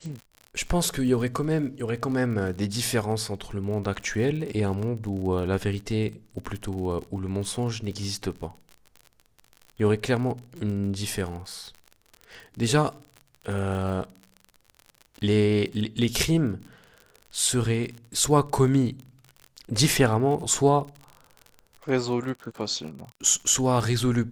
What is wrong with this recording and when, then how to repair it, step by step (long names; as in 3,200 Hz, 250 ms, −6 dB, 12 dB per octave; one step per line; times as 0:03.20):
surface crackle 47 per second −34 dBFS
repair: click removal